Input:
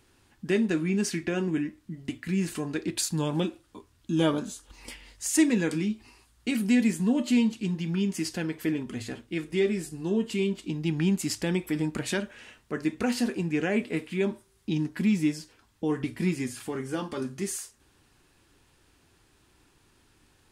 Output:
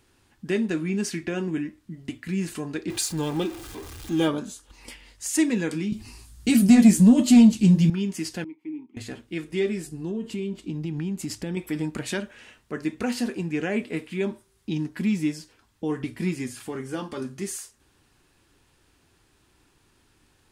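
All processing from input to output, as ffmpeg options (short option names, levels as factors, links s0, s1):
-filter_complex "[0:a]asettb=1/sr,asplit=3[s0][s1][s2];[s0]atrim=end=2.904[s3];[s1]atrim=start=2.9:end=4.28,asetpts=PTS-STARTPTS,afade=t=in:d=0.004:c=qsin,afade=t=out:st=1.376:d=0.004:c=qsin,aeval=exprs='val(0)+0.5*0.0158*sgn(val(0))':c=same,aecho=1:1:2.5:0.42,atrim=end_sample=60858[s4];[s2]atrim=start=4.276[s5];[s3][s4]acrossfade=d=0.004:c1=hsin:c2=qsin[s6];[s6][s5]acrossfade=d=0.004:c1=qsin:c2=hsin,asettb=1/sr,asplit=3[s7][s8][s9];[s7]atrim=end=5.924[s10];[s8]atrim=start=5.92:end=7.9,asetpts=PTS-STARTPTS,afade=t=in:d=0.004:c=qsin,afade=t=out:st=1.976:d=0.004:c=qsin,bass=f=250:g=13,treble=f=4000:g=10,acontrast=85,flanger=delay=6.5:depth=10:regen=-46:speed=1.4:shape=triangular[s11];[s9]atrim=start=7.896[s12];[s10][s11]acrossfade=d=0.004:c1=hsin:c2=qsin[s13];[s13][s12]acrossfade=d=0.004:c1=qsin:c2=hsin,asettb=1/sr,asplit=3[s14][s15][s16];[s14]atrim=end=8.444[s17];[s15]atrim=start=8.44:end=8.97,asetpts=PTS-STARTPTS,afade=t=in:d=0.004:c=qsin,afade=t=out:st=0.526:d=0.004:c=qsin,agate=range=0.355:threshold=0.0141:ratio=16:release=100:detection=peak,acompressor=threshold=0.02:ratio=1.5:attack=3.2:release=140:knee=1:detection=peak,asplit=3[s18][s19][s20];[s18]bandpass=f=300:t=q:w=8,volume=1[s21];[s19]bandpass=f=870:t=q:w=8,volume=0.501[s22];[s20]bandpass=f=2240:t=q:w=8,volume=0.355[s23];[s21][s22][s23]amix=inputs=3:normalize=0[s24];[s16]atrim=start=8.966[s25];[s17][s24]acrossfade=d=0.004:c1=hsin:c2=qsin[s26];[s26][s25]acrossfade=d=0.004:c1=qsin:c2=hsin,asettb=1/sr,asplit=3[s27][s28][s29];[s27]atrim=end=9.874[s30];[s28]atrim=start=9.87:end=11.57,asetpts=PTS-STARTPTS,afade=t=in:d=0.004:c=qsin,afade=t=out:st=1.696:d=0.004:c=qsin,tiltshelf=f=640:g=3.5,acompressor=threshold=0.0501:ratio=6:attack=3.2:release=140:knee=1:detection=peak[s31];[s29]atrim=start=11.566[s32];[s30][s31]acrossfade=d=0.004:c1=hsin:c2=qsin[s33];[s33][s32]acrossfade=d=0.004:c1=qsin:c2=hsin"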